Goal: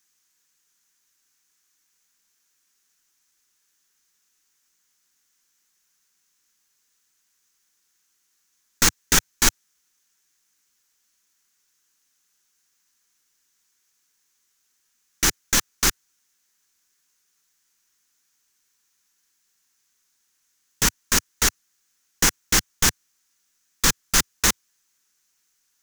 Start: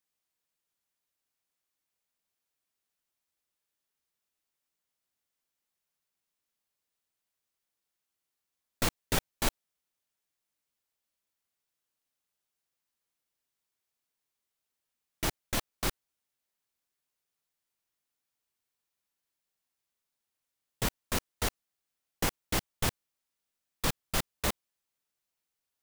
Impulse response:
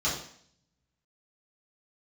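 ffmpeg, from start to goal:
-filter_complex "[0:a]equalizer=f=100:t=o:w=0.67:g=-10,equalizer=f=630:t=o:w=0.67:g=-11,equalizer=f=1.6k:t=o:w=0.67:g=6,equalizer=f=6.3k:t=o:w=0.67:g=12,equalizer=f=16k:t=o:w=0.67:g=3,asplit=2[a][b];[b]aeval=exprs='(mod(21.1*val(0)+1,2)-1)/21.1':c=same,volume=-7dB[c];[a][c]amix=inputs=2:normalize=0,volume=8.5dB"

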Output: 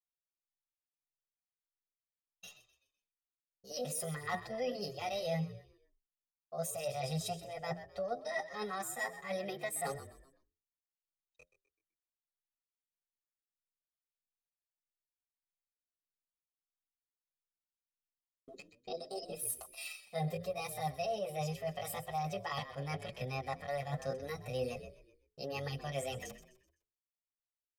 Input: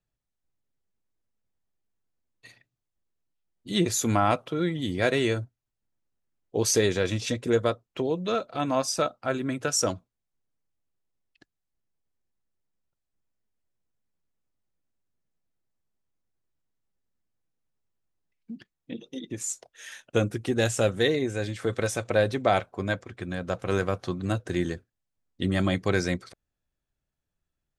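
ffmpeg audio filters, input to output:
-filter_complex "[0:a]bandreject=f=60:t=h:w=6,bandreject=f=120:t=h:w=6,bandreject=f=180:t=h:w=6,bandreject=f=240:t=h:w=6,bandreject=f=300:t=h:w=6,bandreject=f=360:t=h:w=6,bandreject=f=420:t=h:w=6,agate=range=-33dB:threshold=-52dB:ratio=3:detection=peak,aecho=1:1:2.3:0.98,areverse,acompressor=threshold=-33dB:ratio=12,areverse,asetrate=64194,aresample=44100,atempo=0.686977,asplit=5[a][b][c][d][e];[b]adelay=127,afreqshift=-46,volume=-14dB[f];[c]adelay=254,afreqshift=-92,volume=-22.2dB[g];[d]adelay=381,afreqshift=-138,volume=-30.4dB[h];[e]adelay=508,afreqshift=-184,volume=-38.5dB[i];[a][f][g][h][i]amix=inputs=5:normalize=0,asplit=2[j][k];[k]adelay=6.5,afreqshift=1.6[l];[j][l]amix=inputs=2:normalize=1,volume=1dB"

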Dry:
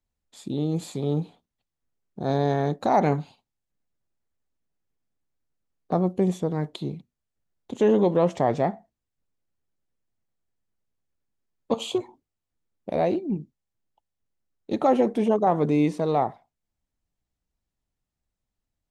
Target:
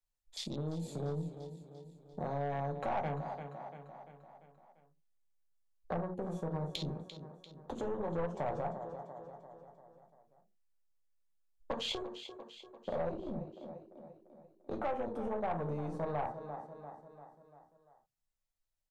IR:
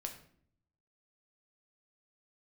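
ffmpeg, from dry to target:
-filter_complex "[0:a]bandreject=f=60:t=h:w=6,bandreject=f=120:t=h:w=6,bandreject=f=180:t=h:w=6,bandreject=f=240:t=h:w=6,bandreject=f=300:t=h:w=6,bandreject=f=360:t=h:w=6,bandreject=f=420:t=h:w=6,bandreject=f=480:t=h:w=6,acompressor=threshold=-38dB:ratio=3,bass=f=250:g=-5,treble=f=4k:g=4[a];[1:a]atrim=start_sample=2205,afade=t=out:st=0.2:d=0.01,atrim=end_sample=9261,asetrate=79380,aresample=44100[b];[a][b]afir=irnorm=-1:irlink=0,afwtdn=0.00158,aecho=1:1:344|688|1032|1376|1720:0.2|0.106|0.056|0.0297|0.0157,aeval=exprs='(tanh(79.4*val(0)+0.3)-tanh(0.3))/79.4':c=same,acrossover=split=150[c][d];[d]acompressor=threshold=-51dB:ratio=2[e];[c][e]amix=inputs=2:normalize=0,equalizer=f=290:w=1.5:g=-10.5,volume=17dB"

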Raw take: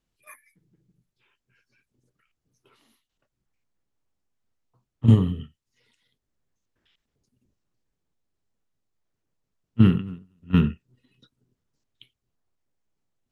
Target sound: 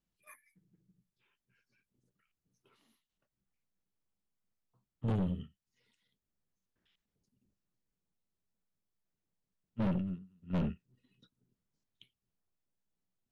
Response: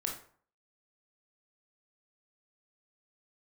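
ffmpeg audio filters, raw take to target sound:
-af "equalizer=f=190:t=o:w=0.31:g=8.5,aeval=exprs='(tanh(11.2*val(0)+0.35)-tanh(0.35))/11.2':c=same,volume=-8dB"

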